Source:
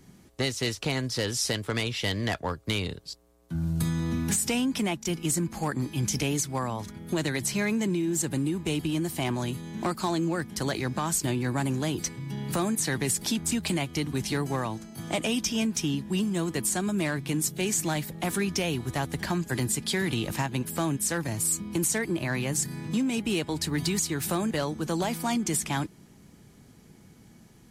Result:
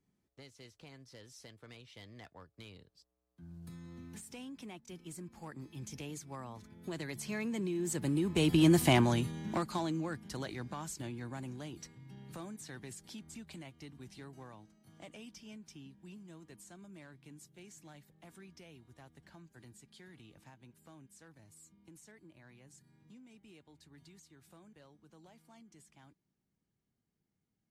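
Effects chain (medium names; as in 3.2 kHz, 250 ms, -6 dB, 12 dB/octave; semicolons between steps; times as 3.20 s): Doppler pass-by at 8.78 s, 12 m/s, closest 2.8 m; treble shelf 6.7 kHz -6 dB; trim +5.5 dB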